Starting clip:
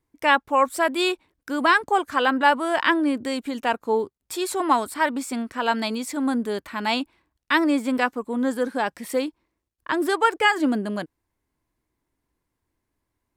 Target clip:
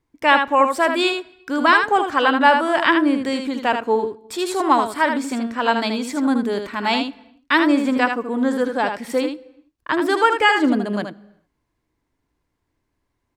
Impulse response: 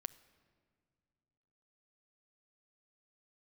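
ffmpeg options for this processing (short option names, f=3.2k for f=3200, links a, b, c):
-filter_complex "[0:a]aecho=1:1:78:0.473,asplit=2[a][b];[1:a]atrim=start_sample=2205,afade=t=out:st=0.42:d=0.01,atrim=end_sample=18963,lowpass=7.9k[c];[b][c]afir=irnorm=-1:irlink=0,volume=5dB[d];[a][d]amix=inputs=2:normalize=0,volume=-3.5dB"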